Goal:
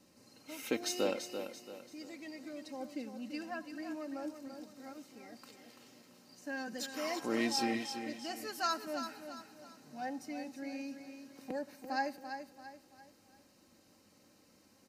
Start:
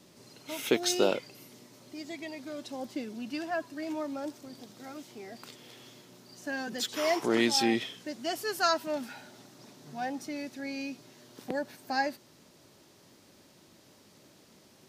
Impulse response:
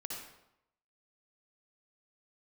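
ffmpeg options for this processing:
-filter_complex "[0:a]equalizer=f=95:w=2.8:g=5.5,bandreject=f=3.4k:w=6,aecho=1:1:3.8:0.52,aecho=1:1:338|676|1014|1352:0.376|0.147|0.0572|0.0223,asplit=2[a][b];[1:a]atrim=start_sample=2205[c];[b][c]afir=irnorm=-1:irlink=0,volume=-17.5dB[d];[a][d]amix=inputs=2:normalize=0,volume=-9dB"

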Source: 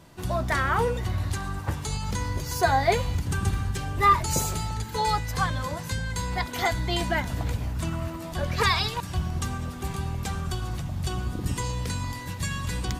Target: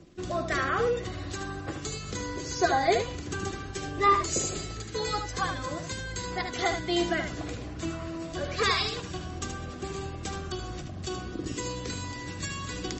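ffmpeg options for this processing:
-filter_complex "[0:a]areverse,acompressor=mode=upward:threshold=-32dB:ratio=2.5,areverse,equalizer=f=340:t=o:w=0.74:g=9.5,anlmdn=0.0631,acrossover=split=250[a][b];[a]acompressor=threshold=-34dB:ratio=8[c];[c][b]amix=inputs=2:normalize=0,lowpass=f=11k:w=0.5412,lowpass=f=11k:w=1.3066,acrusher=bits=9:mix=0:aa=0.000001,asuperstop=centerf=910:order=12:qfactor=6,highshelf=f=5k:g=5,asplit=2[d][e];[e]aecho=0:1:75:0.447[f];[d][f]amix=inputs=2:normalize=0,volume=-3.5dB" -ar 32000 -c:a libmp3lame -b:a 32k

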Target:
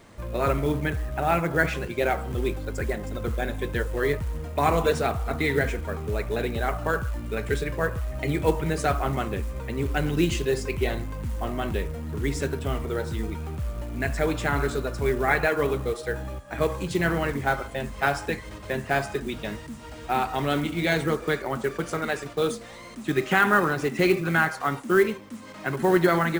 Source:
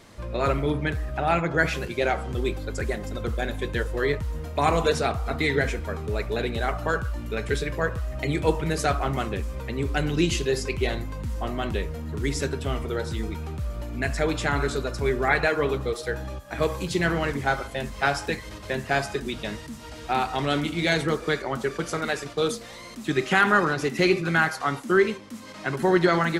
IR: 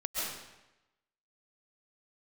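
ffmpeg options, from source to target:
-af "aresample=22050,aresample=44100,acrusher=bits=5:mode=log:mix=0:aa=0.000001,equalizer=f=4.9k:w=0.94:g=-6"

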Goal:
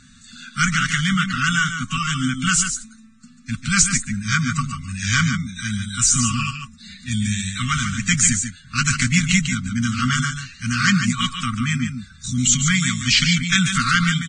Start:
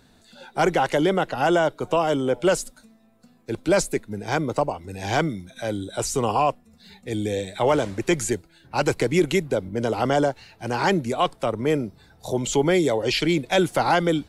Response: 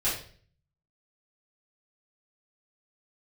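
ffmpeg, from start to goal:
-af "aexciter=amount=1.4:drive=4.9:freq=6k,afftfilt=real='re*(1-between(b*sr/4096,260,1100))':imag='im*(1-between(b*sr/4096,260,1100))':win_size=4096:overlap=0.75,acontrast=27,aecho=1:1:144:0.422,volume=2.5dB" -ar 22050 -c:a libvorbis -b:a 16k

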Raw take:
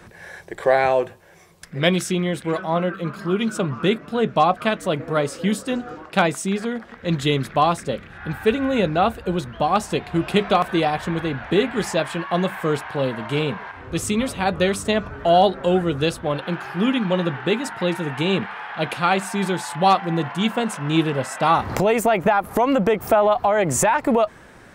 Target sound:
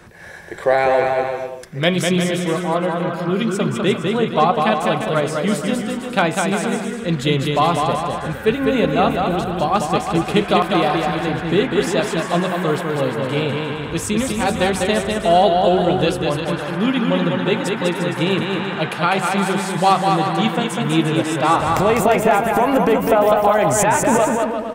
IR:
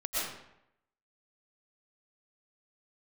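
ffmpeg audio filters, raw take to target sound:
-filter_complex "[0:a]bandreject=f=94.18:t=h:w=4,bandreject=f=188.36:t=h:w=4,bandreject=f=282.54:t=h:w=4,bandreject=f=376.72:t=h:w=4,bandreject=f=470.9:t=h:w=4,bandreject=f=565.08:t=h:w=4,bandreject=f=659.26:t=h:w=4,bandreject=f=753.44:t=h:w=4,bandreject=f=847.62:t=h:w=4,bandreject=f=941.8:t=h:w=4,bandreject=f=1.03598k:t=h:w=4,bandreject=f=1.13016k:t=h:w=4,bandreject=f=1.22434k:t=h:w=4,bandreject=f=1.31852k:t=h:w=4,bandreject=f=1.4127k:t=h:w=4,bandreject=f=1.50688k:t=h:w=4,bandreject=f=1.60106k:t=h:w=4,bandreject=f=1.69524k:t=h:w=4,bandreject=f=1.78942k:t=h:w=4,bandreject=f=1.8836k:t=h:w=4,bandreject=f=1.97778k:t=h:w=4,bandreject=f=2.07196k:t=h:w=4,bandreject=f=2.16614k:t=h:w=4,bandreject=f=2.26032k:t=h:w=4,bandreject=f=2.3545k:t=h:w=4,bandreject=f=2.44868k:t=h:w=4,bandreject=f=2.54286k:t=h:w=4,bandreject=f=2.63704k:t=h:w=4,bandreject=f=2.73122k:t=h:w=4,bandreject=f=2.8254k:t=h:w=4,bandreject=f=2.91958k:t=h:w=4,bandreject=f=3.01376k:t=h:w=4,bandreject=f=3.10794k:t=h:w=4,bandreject=f=3.20212k:t=h:w=4,bandreject=f=3.2963k:t=h:w=4,bandreject=f=3.39048k:t=h:w=4,bandreject=f=3.48466k:t=h:w=4,bandreject=f=3.57884k:t=h:w=4,asplit=2[a][b];[b]aecho=0:1:200|350|462.5|546.9|610.2:0.631|0.398|0.251|0.158|0.1[c];[a][c]amix=inputs=2:normalize=0,volume=1.5dB"

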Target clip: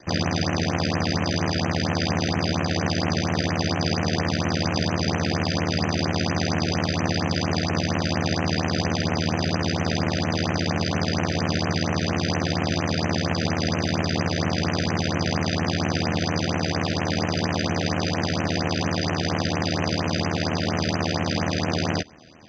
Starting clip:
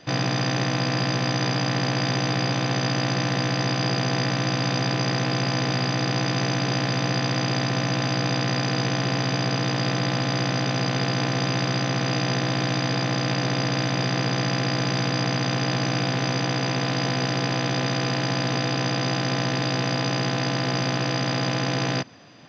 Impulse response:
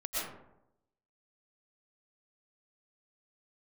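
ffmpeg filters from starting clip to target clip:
-af "aeval=exprs='val(0)*sin(2*PI*39*n/s)':c=same,afftfilt=real='re*(1-between(b*sr/1024,910*pow(4600/910,0.5+0.5*sin(2*PI*4.3*pts/sr))/1.41,910*pow(4600/910,0.5+0.5*sin(2*PI*4.3*pts/sr))*1.41))':imag='im*(1-between(b*sr/1024,910*pow(4600/910,0.5+0.5*sin(2*PI*4.3*pts/sr))/1.41,910*pow(4600/910,0.5+0.5*sin(2*PI*4.3*pts/sr))*1.41))':win_size=1024:overlap=0.75,volume=3.5dB"

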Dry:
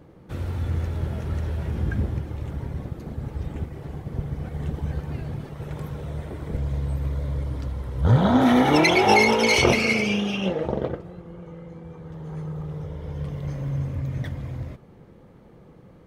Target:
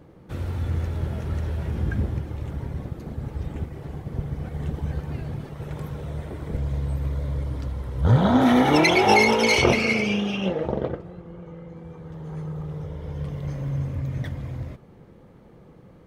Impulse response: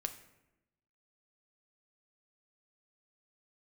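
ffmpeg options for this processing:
-filter_complex "[0:a]asettb=1/sr,asplit=3[a][b][c];[a]atrim=end=9.554[d];[b]atrim=start=9.55:end=11.77,asetpts=PTS-STARTPTS,afade=t=in:d=0.004:c=qsin,afade=t=out:st=2.216:d=0.004:c=qsin,highshelf=f=5.5k:g=-6[e];[c]atrim=start=11.766[f];[d][e]acrossfade=d=0.004:c1=hsin:c2=qsin[g];[g][f]acrossfade=d=0.004:c1=qsin:c2=hsin"

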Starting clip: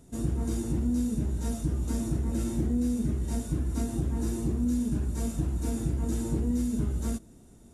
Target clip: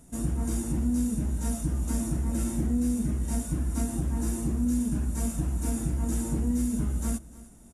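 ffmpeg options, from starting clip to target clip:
-filter_complex "[0:a]equalizer=f=100:t=o:w=0.67:g=-9,equalizer=f=400:t=o:w=0.67:g=-8,equalizer=f=4k:t=o:w=0.67:g=-6,equalizer=f=10k:t=o:w=0.67:g=5,asplit=2[a][b];[b]aecho=0:1:305:0.112[c];[a][c]amix=inputs=2:normalize=0,volume=3dB"

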